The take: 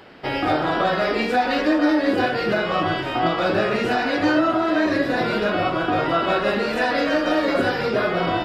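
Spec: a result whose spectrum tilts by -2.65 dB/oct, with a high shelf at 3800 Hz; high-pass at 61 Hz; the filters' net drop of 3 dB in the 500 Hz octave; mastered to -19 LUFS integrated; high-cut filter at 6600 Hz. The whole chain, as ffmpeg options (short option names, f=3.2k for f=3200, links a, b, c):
-af "highpass=61,lowpass=6.6k,equalizer=f=500:t=o:g=-4,highshelf=f=3.8k:g=5.5,volume=2.5dB"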